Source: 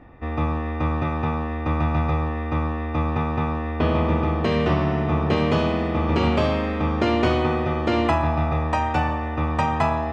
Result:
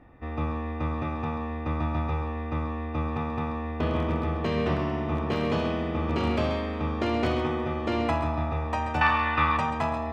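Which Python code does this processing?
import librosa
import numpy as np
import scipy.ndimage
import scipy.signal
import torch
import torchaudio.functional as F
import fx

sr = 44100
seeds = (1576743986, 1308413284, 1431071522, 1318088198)

y = np.minimum(x, 2.0 * 10.0 ** (-12.0 / 20.0) - x)
y = fx.band_shelf(y, sr, hz=2200.0, db=16.0, octaves=2.7, at=(9.01, 9.57))
y = y + 10.0 ** (-9.5 / 20.0) * np.pad(y, (int(133 * sr / 1000.0), 0))[:len(y)]
y = y * librosa.db_to_amplitude(-6.5)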